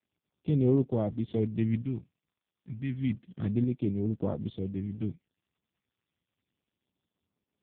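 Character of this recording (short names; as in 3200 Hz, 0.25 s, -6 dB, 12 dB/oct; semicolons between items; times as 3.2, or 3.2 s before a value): phasing stages 2, 0.3 Hz, lowest notch 440–1600 Hz; tremolo saw up 1.1 Hz, depth 45%; AMR-NB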